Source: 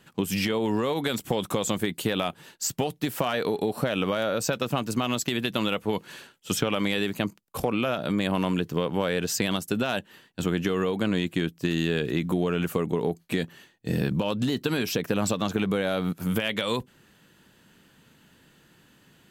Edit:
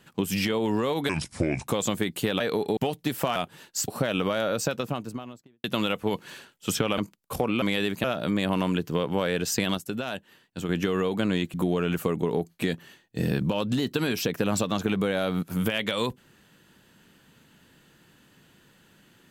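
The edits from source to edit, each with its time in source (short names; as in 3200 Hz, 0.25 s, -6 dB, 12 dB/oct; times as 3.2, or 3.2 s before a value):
1.09–1.49 speed 69%
2.22–2.74 swap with 3.33–3.7
4.33–5.46 studio fade out
6.8–7.22 move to 7.86
9.6–10.51 gain -5 dB
11.36–12.24 cut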